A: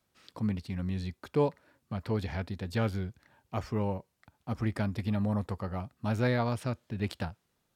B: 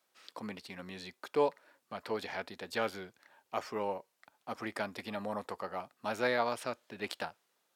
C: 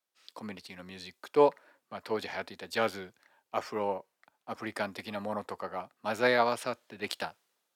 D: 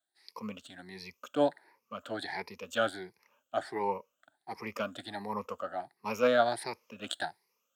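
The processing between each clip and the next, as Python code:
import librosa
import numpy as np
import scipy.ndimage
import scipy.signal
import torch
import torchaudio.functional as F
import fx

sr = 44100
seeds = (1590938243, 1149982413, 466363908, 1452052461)

y1 = scipy.signal.sosfilt(scipy.signal.butter(2, 470.0, 'highpass', fs=sr, output='sos'), x)
y1 = F.gain(torch.from_numpy(y1), 2.0).numpy()
y2 = fx.band_widen(y1, sr, depth_pct=40)
y2 = F.gain(torch.from_numpy(y2), 3.0).numpy()
y3 = fx.spec_ripple(y2, sr, per_octave=0.83, drift_hz=1.4, depth_db=18)
y3 = F.gain(torch.from_numpy(y3), -4.5).numpy()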